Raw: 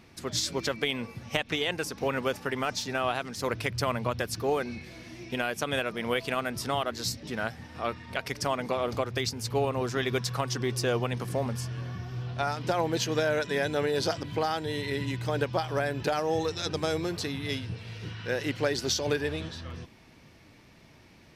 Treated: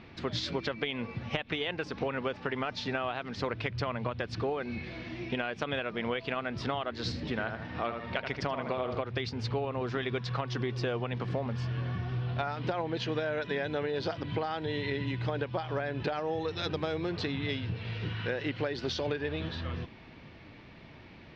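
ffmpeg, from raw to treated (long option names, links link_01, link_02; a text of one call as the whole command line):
ffmpeg -i in.wav -filter_complex "[0:a]asettb=1/sr,asplit=3[link_01][link_02][link_03];[link_01]atrim=end=6.954[link_04];[link_02]atrim=start=6.95:end=8.98,asetpts=PTS-STARTPTS,afade=type=in:duration=0.004:curve=qsin,afade=type=out:start_time=2.026:duration=0.004:curve=qsin,asplit=2[link_05][link_06];[link_06]adelay=78,lowpass=frequency=2000:poles=1,volume=-6dB,asplit=2[link_07][link_08];[link_08]adelay=78,lowpass=frequency=2000:poles=1,volume=0.34,asplit=2[link_09][link_10];[link_10]adelay=78,lowpass=frequency=2000:poles=1,volume=0.34,asplit=2[link_11][link_12];[link_12]adelay=78,lowpass=frequency=2000:poles=1,volume=0.34[link_13];[link_05][link_07][link_09][link_11][link_13]amix=inputs=5:normalize=0,atrim=end_sample=89523[link_14];[link_03]atrim=start=8.976[link_15];[link_04][link_14]acrossfade=duration=0.004:curve1=hsin:curve2=qsin[link_16];[link_16][link_15]acrossfade=duration=0.004:curve1=qsin:curve2=hsin,lowpass=frequency=3900:width=0.5412,lowpass=frequency=3900:width=1.3066,acompressor=threshold=-34dB:ratio=6,volume=4.5dB" out.wav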